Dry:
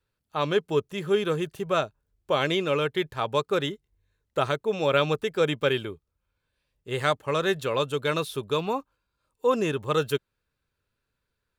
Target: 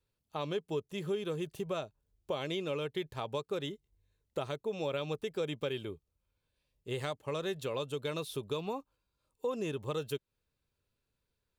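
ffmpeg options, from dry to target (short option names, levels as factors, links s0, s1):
-af "acompressor=threshold=0.0282:ratio=3,equalizer=f=1500:w=1.5:g=-7.5,volume=0.75"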